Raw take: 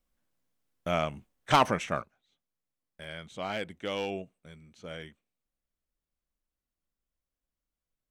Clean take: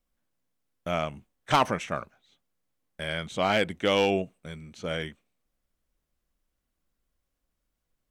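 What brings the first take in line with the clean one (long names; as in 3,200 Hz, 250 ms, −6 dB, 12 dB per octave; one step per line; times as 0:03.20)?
repair the gap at 0:00.80/0:02.21/0:03.04, 1.8 ms
level correction +10 dB, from 0:02.02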